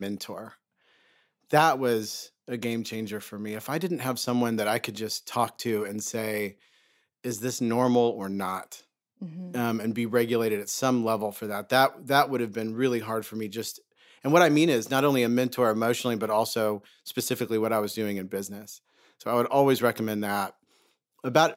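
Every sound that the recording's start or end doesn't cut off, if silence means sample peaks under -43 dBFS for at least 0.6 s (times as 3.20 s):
1.51–6.52 s
7.24–20.50 s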